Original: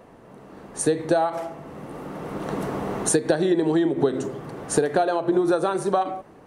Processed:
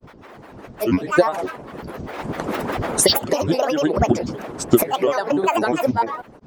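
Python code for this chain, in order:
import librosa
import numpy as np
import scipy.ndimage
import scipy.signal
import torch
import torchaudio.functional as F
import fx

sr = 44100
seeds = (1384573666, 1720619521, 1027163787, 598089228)

y = fx.granulator(x, sr, seeds[0], grain_ms=100.0, per_s=20.0, spray_ms=100.0, spread_st=12)
y = fx.hpss(y, sr, part='harmonic', gain_db=-10)
y = y * 10.0 ** (8.0 / 20.0)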